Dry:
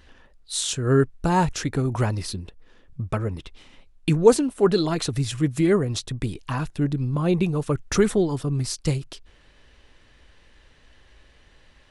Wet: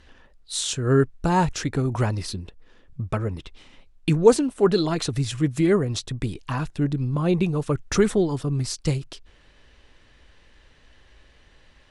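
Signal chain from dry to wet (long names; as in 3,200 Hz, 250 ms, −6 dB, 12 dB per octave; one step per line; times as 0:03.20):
low-pass filter 10,000 Hz 12 dB per octave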